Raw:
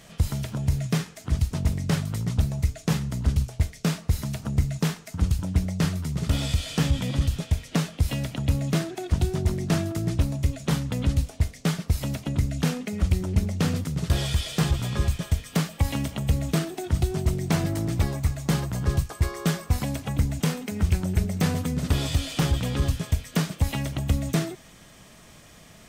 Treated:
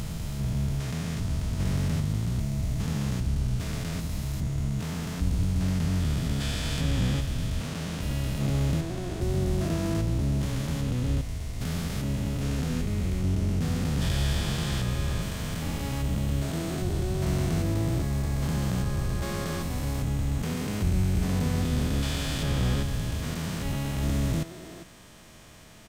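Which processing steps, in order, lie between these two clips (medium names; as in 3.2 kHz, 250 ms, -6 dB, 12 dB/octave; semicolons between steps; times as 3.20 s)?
spectrogram pixelated in time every 400 ms; harmony voices -12 st -6 dB, +7 st -12 dB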